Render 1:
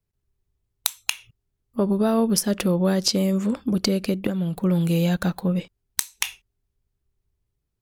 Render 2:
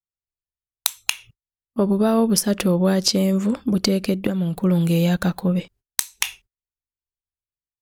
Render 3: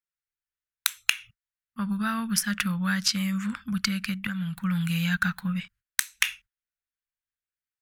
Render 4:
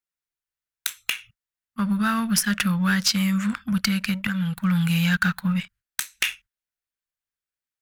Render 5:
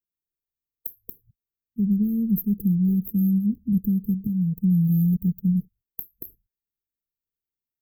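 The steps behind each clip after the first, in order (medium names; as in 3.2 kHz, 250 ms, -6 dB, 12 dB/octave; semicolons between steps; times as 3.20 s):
gate -50 dBFS, range -29 dB; trim +2.5 dB
FFT filter 210 Hz 0 dB, 360 Hz -27 dB, 600 Hz -19 dB, 1.5 kHz +15 dB, 4.5 kHz +3 dB; trim -8 dB
waveshaping leveller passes 1; saturation -15 dBFS, distortion -13 dB; trim +2.5 dB
brick-wall FIR band-stop 480–12000 Hz; trim +2 dB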